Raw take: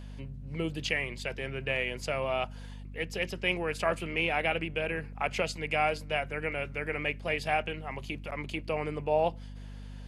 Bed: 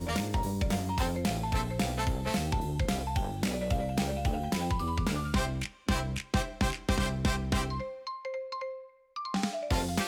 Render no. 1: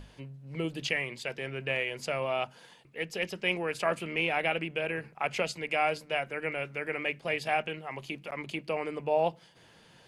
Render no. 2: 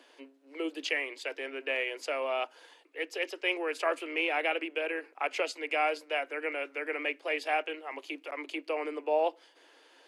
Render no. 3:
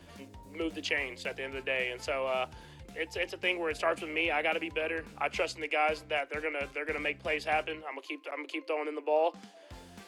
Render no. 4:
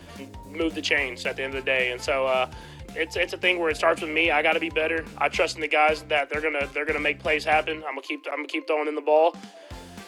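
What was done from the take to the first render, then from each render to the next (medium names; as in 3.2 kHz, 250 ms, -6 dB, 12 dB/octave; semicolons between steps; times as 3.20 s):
hum notches 50/100/150/200/250 Hz
Chebyshev high-pass 270 Hz, order 8; treble shelf 8.9 kHz -5 dB
add bed -20.5 dB
trim +8.5 dB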